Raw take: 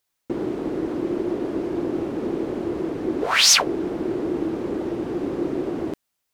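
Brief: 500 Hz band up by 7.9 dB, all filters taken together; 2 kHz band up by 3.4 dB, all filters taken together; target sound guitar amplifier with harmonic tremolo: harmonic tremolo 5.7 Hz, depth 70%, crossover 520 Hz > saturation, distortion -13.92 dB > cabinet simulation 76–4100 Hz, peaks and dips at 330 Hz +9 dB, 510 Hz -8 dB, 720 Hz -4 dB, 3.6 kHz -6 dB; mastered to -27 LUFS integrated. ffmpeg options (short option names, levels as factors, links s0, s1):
-filter_complex "[0:a]equalizer=f=500:t=o:g=8,equalizer=f=2000:t=o:g=4.5,acrossover=split=520[s0][s1];[s0]aeval=exprs='val(0)*(1-0.7/2+0.7/2*cos(2*PI*5.7*n/s))':c=same[s2];[s1]aeval=exprs='val(0)*(1-0.7/2-0.7/2*cos(2*PI*5.7*n/s))':c=same[s3];[s2][s3]amix=inputs=2:normalize=0,asoftclip=threshold=0.158,highpass=76,equalizer=f=330:t=q:w=4:g=9,equalizer=f=510:t=q:w=4:g=-8,equalizer=f=720:t=q:w=4:g=-4,equalizer=f=3600:t=q:w=4:g=-6,lowpass=f=4100:w=0.5412,lowpass=f=4100:w=1.3066,volume=0.596"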